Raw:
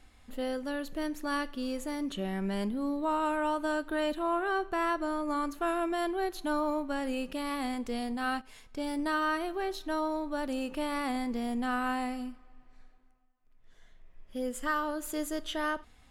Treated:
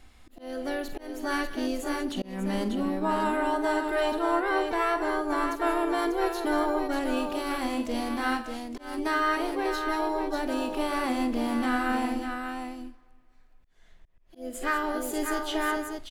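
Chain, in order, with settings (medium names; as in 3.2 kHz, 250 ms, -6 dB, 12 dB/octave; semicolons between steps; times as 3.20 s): harmony voices +3 st -18 dB, +5 st -10 dB; multi-tap echo 47/185/195/593 ms -11/-15.5/-18.5/-6 dB; slow attack 271 ms; trim +2.5 dB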